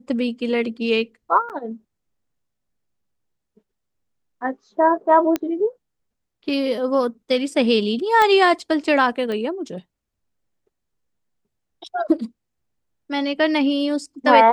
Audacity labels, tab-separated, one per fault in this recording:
1.490000	1.500000	drop-out 8.4 ms
5.360000	5.360000	click −9 dBFS
8.220000	8.220000	click −6 dBFS
9.320000	9.320000	click −17 dBFS

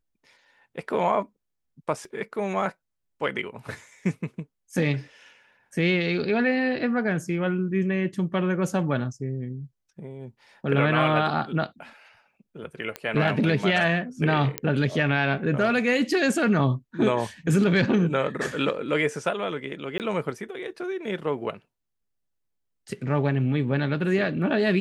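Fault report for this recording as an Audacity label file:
2.050000	2.050000	drop-out 2.4 ms
12.960000	12.960000	click −16 dBFS
14.580000	14.580000	click −8 dBFS
19.980000	20.000000	drop-out 18 ms

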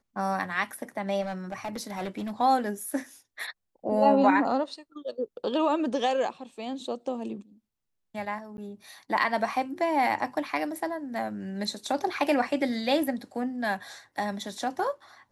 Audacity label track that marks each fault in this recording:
1.210000	2.410000	clipping −28.5 dBFS
8.570000	8.580000	drop-out

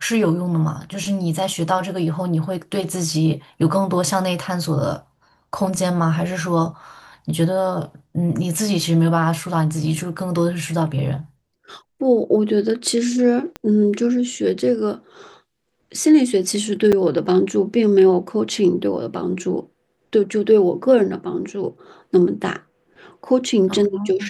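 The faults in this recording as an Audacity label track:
13.560000	13.560000	click −16 dBFS
16.920000	16.930000	drop-out 6.1 ms

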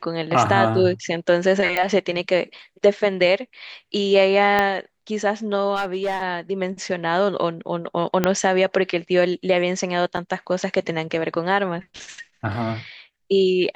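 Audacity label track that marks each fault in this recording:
1.770000	1.770000	click −9 dBFS
4.590000	4.590000	click −7 dBFS
5.750000	6.230000	clipping −18.5 dBFS
8.240000	8.240000	click −4 dBFS
10.170000	10.170000	drop-out 3.7 ms

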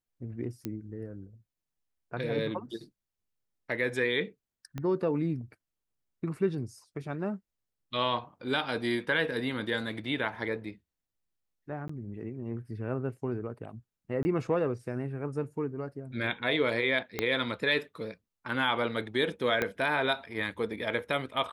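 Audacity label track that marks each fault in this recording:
0.650000	0.650000	click −21 dBFS
4.780000	4.780000	click −23 dBFS
11.880000	11.890000	drop-out 14 ms
14.230000	14.250000	drop-out 20 ms
17.190000	17.190000	click −14 dBFS
19.620000	19.620000	click −14 dBFS

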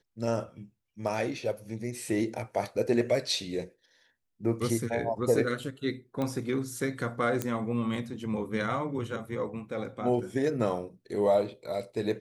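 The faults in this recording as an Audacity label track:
6.220000	6.220000	click −20 dBFS
7.420000	7.420000	click −15 dBFS

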